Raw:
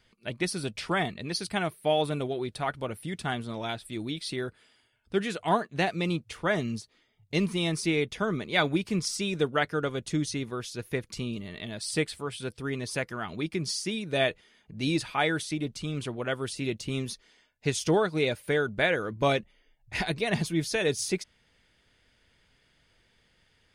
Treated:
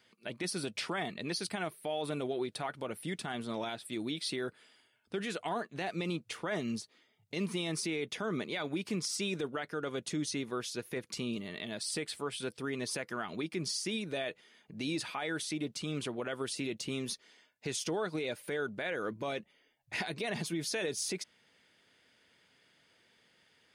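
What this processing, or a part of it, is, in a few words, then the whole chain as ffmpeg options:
stacked limiters: -af "highpass=190,alimiter=limit=-15dB:level=0:latency=1:release=350,alimiter=limit=-21dB:level=0:latency=1:release=24,alimiter=level_in=2dB:limit=-24dB:level=0:latency=1:release=98,volume=-2dB"

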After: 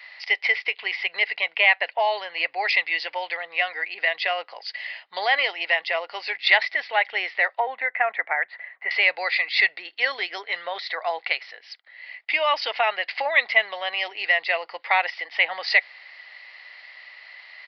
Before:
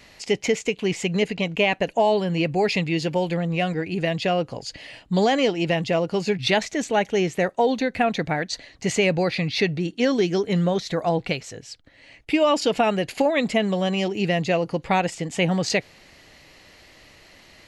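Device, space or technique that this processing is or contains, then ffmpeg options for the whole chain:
musical greeting card: -filter_complex "[0:a]aresample=11025,aresample=44100,highpass=frequency=740:width=0.5412,highpass=frequency=740:width=1.3066,equalizer=frequency=2000:width_type=o:width=0.27:gain=12,asettb=1/sr,asplit=3[link_01][link_02][link_03];[link_01]atrim=end=7.604[link_04];[link_02]atrim=start=7.6:end=8.91,asetpts=PTS-STARTPTS,afade=type=in:duration=0.004:curve=qsin,afade=type=out:start_time=1.306:duration=0.004:curve=qsin,lowpass=frequency=2100:width=0.5412,lowpass=frequency=2100:width=1.3066[link_05];[link_03]atrim=start=8.906[link_06];[link_04][link_05]acrossfade=duration=0.004:curve1=hsin:curve2=qsin[link_07];[link_07][link_06]acrossfade=duration=0.004:curve1=qsin:curve2=hsin,volume=1.5dB"

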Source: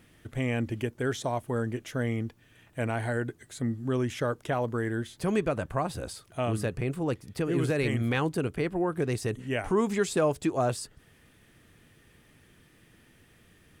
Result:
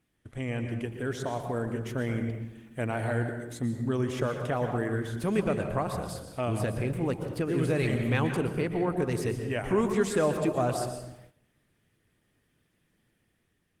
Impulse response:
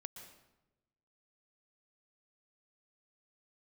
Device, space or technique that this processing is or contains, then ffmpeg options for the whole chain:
speakerphone in a meeting room: -filter_complex "[0:a]asplit=3[link_01][link_02][link_03];[link_01]afade=type=out:start_time=2.87:duration=0.02[link_04];[link_02]equalizer=frequency=6900:width=2.4:gain=-4,afade=type=in:start_time=2.87:duration=0.02,afade=type=out:start_time=3.41:duration=0.02[link_05];[link_03]afade=type=in:start_time=3.41:duration=0.02[link_06];[link_04][link_05][link_06]amix=inputs=3:normalize=0[link_07];[1:a]atrim=start_sample=2205[link_08];[link_07][link_08]afir=irnorm=-1:irlink=0,dynaudnorm=framelen=940:gausssize=3:maxgain=3.5dB,agate=range=-12dB:threshold=-52dB:ratio=16:detection=peak,volume=1.5dB" -ar 48000 -c:a libopus -b:a 20k

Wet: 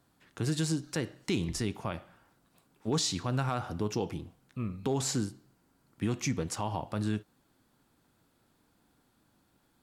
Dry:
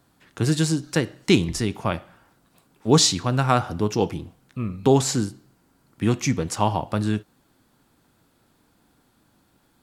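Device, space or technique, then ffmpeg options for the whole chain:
clipper into limiter: -af "asoftclip=type=hard:threshold=-6dB,alimiter=limit=-13.5dB:level=0:latency=1:release=74,volume=-7dB"

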